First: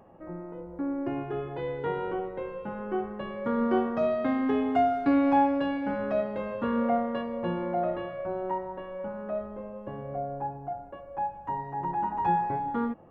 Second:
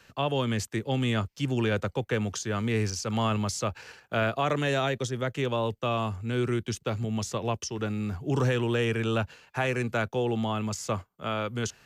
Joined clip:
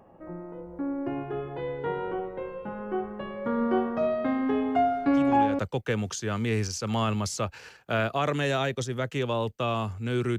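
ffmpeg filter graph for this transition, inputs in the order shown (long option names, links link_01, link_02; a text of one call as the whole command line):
ffmpeg -i cue0.wav -i cue1.wav -filter_complex "[1:a]asplit=2[link_01][link_02];[0:a]apad=whole_dur=10.38,atrim=end=10.38,atrim=end=5.592[link_03];[link_02]atrim=start=1.818:end=6.61[link_04];[link_01]atrim=start=1.31:end=1.82,asetpts=PTS-STARTPTS,volume=-9.5dB,afade=type=in:duration=0.004:curve=hsin,afade=type=out:start_time=0.506:duration=0.004:curve=hsin,adelay=5080[link_05];[link_03][link_04]acrossfade=duration=0.004:curve1=hsin:curve2=hsin[link_06];[link_06][link_05]amix=inputs=2:normalize=0" out.wav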